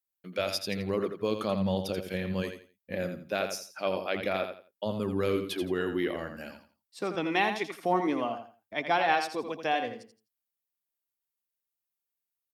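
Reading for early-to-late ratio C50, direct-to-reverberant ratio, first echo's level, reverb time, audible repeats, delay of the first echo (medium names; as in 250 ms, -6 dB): no reverb, no reverb, -8.0 dB, no reverb, 3, 84 ms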